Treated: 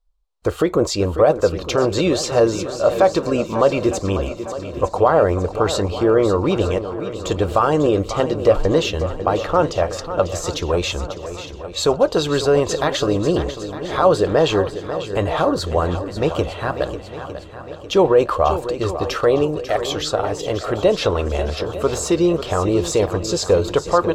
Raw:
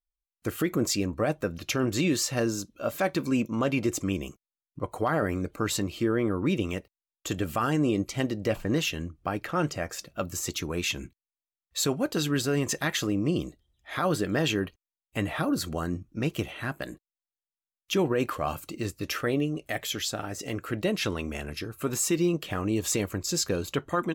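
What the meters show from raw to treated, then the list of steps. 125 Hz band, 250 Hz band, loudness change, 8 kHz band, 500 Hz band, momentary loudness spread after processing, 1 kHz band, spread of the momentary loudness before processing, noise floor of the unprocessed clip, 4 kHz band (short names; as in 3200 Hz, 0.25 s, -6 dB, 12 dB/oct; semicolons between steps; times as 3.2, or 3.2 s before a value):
+7.5 dB, +6.0 dB, +10.0 dB, +2.5 dB, +14.5 dB, 10 LU, +13.0 dB, 9 LU, under -85 dBFS, +7.0 dB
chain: graphic EQ 125/250/500/1000/2000/4000/8000 Hz -11/-11/+10/+9/-5/+9/+7 dB; in parallel at -3 dB: limiter -14.5 dBFS, peak gain reduction 8 dB; on the sum: RIAA curve playback; swung echo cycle 0.907 s, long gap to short 1.5:1, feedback 46%, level -11.5 dB; gain +1 dB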